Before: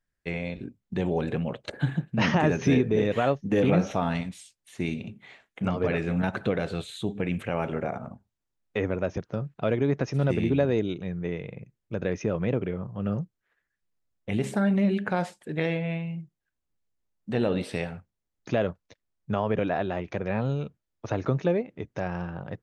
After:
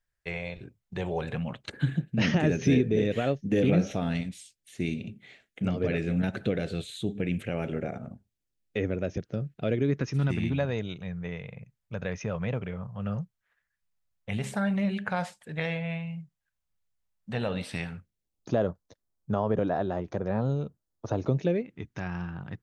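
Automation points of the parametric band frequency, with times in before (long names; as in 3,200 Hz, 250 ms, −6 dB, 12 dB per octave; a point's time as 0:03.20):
parametric band −14 dB 0.93 octaves
0:01.19 250 Hz
0:01.99 1,000 Hz
0:09.72 1,000 Hz
0:10.69 330 Hz
0:17.60 330 Hz
0:18.56 2,400 Hz
0:21.07 2,400 Hz
0:21.79 550 Hz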